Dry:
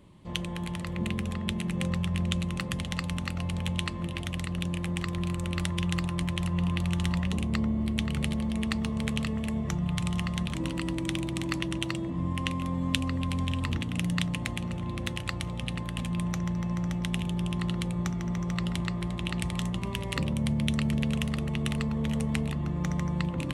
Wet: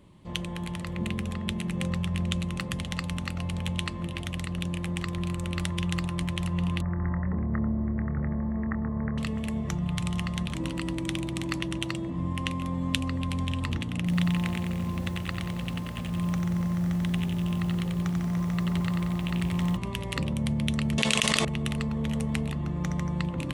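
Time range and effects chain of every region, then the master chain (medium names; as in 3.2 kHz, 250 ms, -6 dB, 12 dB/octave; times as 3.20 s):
6.81–9.18 s: steep low-pass 1.9 kHz 72 dB/octave + doubling 26 ms -11 dB
13.97–19.77 s: treble shelf 3.9 kHz -10.5 dB + delay 319 ms -18 dB + bit-crushed delay 91 ms, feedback 55%, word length 8-bit, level -4 dB
20.98–21.45 s: frequency weighting ITU-R 468 + level flattener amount 100%
whole clip: none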